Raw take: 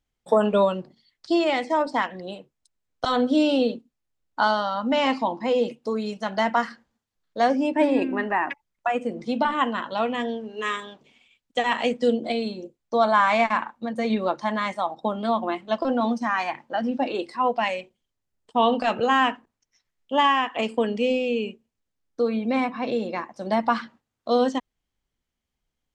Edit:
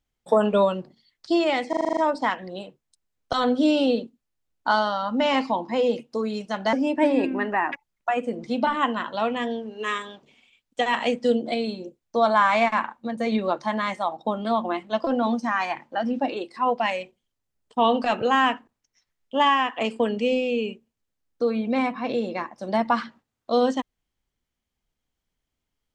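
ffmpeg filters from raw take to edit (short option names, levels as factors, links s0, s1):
-filter_complex "[0:a]asplit=10[s0][s1][s2][s3][s4][s5][s6][s7][s8][s9];[s0]atrim=end=1.732[s10];[s1]atrim=start=1.688:end=1.732[s11];[s2]atrim=start=1.688:end=1.732[s12];[s3]atrim=start=1.688:end=1.732[s13];[s4]atrim=start=1.688:end=1.732[s14];[s5]atrim=start=1.688:end=1.732[s15];[s6]atrim=start=1.688:end=1.732[s16];[s7]atrim=start=1.688:end=6.452[s17];[s8]atrim=start=7.508:end=17.32,asetpts=PTS-STARTPTS,afade=t=out:st=9.522:d=0.29:silence=0.398107[s18];[s9]atrim=start=17.32,asetpts=PTS-STARTPTS,afade=t=in:d=0.004:c=hsin:silence=0.398107[s19];[s10][s11]acrossfade=d=0.004:c1=hsin:c2=hsin[s20];[s20][s12]acrossfade=d=0.004:c1=hsin:c2=hsin[s21];[s21][s13]acrossfade=d=0.004:c1=hsin:c2=hsin[s22];[s22][s14]acrossfade=d=0.004:c1=hsin:c2=hsin[s23];[s23][s15]acrossfade=d=0.004:c1=hsin:c2=hsin[s24];[s24][s16]acrossfade=d=0.004:c1=hsin:c2=hsin[s25];[s25][s17]acrossfade=d=0.004:c1=hsin:c2=hsin[s26];[s18][s19]concat=n=2:v=0:a=1[s27];[s26][s27]acrossfade=d=0.004:c1=hsin:c2=hsin"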